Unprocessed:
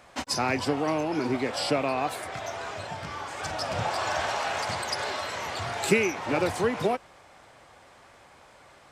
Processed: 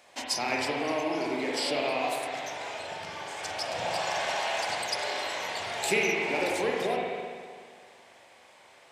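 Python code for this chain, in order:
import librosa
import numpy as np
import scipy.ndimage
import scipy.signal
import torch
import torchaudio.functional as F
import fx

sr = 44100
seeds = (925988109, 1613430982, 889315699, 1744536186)

y = fx.highpass(x, sr, hz=760.0, slope=6)
y = fx.peak_eq(y, sr, hz=1300.0, db=-10.0, octaves=0.72)
y = fx.rev_spring(y, sr, rt60_s=1.9, pass_ms=(42, 54), chirp_ms=50, drr_db=-2.0)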